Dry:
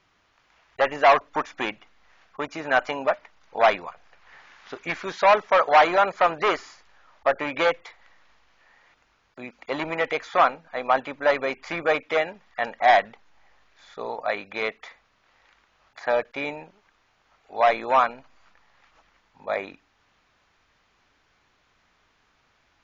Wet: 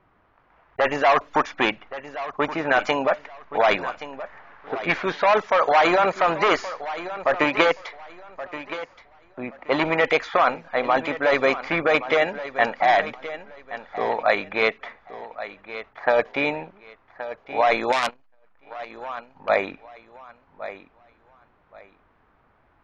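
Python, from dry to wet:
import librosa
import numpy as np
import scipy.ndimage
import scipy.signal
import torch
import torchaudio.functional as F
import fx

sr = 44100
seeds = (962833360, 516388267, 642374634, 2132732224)

p1 = fx.env_lowpass(x, sr, base_hz=1200.0, full_db=-19.5)
p2 = fx.wow_flutter(p1, sr, seeds[0], rate_hz=2.1, depth_cents=22.0)
p3 = fx.over_compress(p2, sr, threshold_db=-23.0, ratio=-0.5)
p4 = p2 + F.gain(torch.from_numpy(p3), 2.0).numpy()
p5 = fx.transient(p4, sr, attack_db=3, sustain_db=-7, at=(7.36, 7.79))
p6 = p5 + fx.echo_feedback(p5, sr, ms=1124, feedback_pct=23, wet_db=-13.5, dry=0)
p7 = fx.transformer_sat(p6, sr, knee_hz=3700.0, at=(17.92, 19.49))
y = F.gain(torch.from_numpy(p7), -2.5).numpy()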